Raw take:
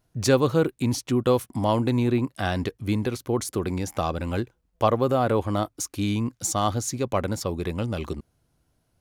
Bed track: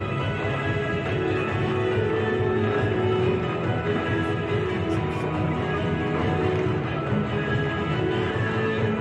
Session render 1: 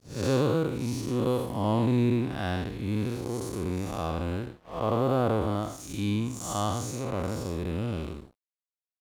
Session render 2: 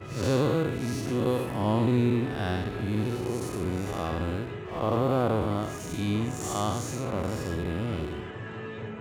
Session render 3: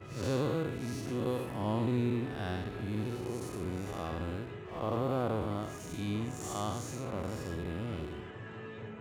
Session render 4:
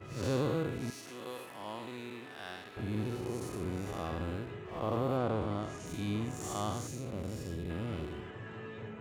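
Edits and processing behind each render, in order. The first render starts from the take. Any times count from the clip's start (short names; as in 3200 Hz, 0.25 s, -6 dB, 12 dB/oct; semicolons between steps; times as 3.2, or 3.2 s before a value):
time blur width 0.222 s; crossover distortion -49.5 dBFS
add bed track -13.5 dB
gain -7 dB
0.9–2.77 HPF 1300 Hz 6 dB/oct; 5.17–5.86 LPF 7900 Hz; 6.87–7.7 bell 1100 Hz -10 dB 1.8 oct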